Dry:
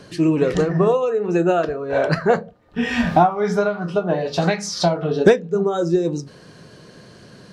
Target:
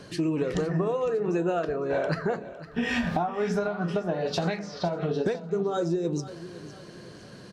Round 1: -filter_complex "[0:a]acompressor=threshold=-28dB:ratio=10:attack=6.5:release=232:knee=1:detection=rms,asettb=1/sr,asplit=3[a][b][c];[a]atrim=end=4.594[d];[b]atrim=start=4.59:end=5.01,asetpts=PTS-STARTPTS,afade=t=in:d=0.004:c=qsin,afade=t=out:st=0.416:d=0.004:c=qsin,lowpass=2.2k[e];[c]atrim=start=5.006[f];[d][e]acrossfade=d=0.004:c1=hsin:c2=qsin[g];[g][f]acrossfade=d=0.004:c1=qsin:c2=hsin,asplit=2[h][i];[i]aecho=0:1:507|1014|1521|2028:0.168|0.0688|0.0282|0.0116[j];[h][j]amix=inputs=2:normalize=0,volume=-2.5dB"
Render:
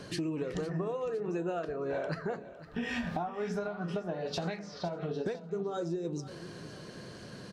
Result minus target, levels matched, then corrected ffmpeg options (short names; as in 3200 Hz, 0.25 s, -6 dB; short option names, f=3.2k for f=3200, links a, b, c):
compressor: peak gain reduction +7.5 dB
-filter_complex "[0:a]acompressor=threshold=-19.5dB:ratio=10:attack=6.5:release=232:knee=1:detection=rms,asettb=1/sr,asplit=3[a][b][c];[a]atrim=end=4.594[d];[b]atrim=start=4.59:end=5.01,asetpts=PTS-STARTPTS,afade=t=in:d=0.004:c=qsin,afade=t=out:st=0.416:d=0.004:c=qsin,lowpass=2.2k[e];[c]atrim=start=5.006[f];[d][e]acrossfade=d=0.004:c1=hsin:c2=qsin[g];[g][f]acrossfade=d=0.004:c1=qsin:c2=hsin,asplit=2[h][i];[i]aecho=0:1:507|1014|1521|2028:0.168|0.0688|0.0282|0.0116[j];[h][j]amix=inputs=2:normalize=0,volume=-2.5dB"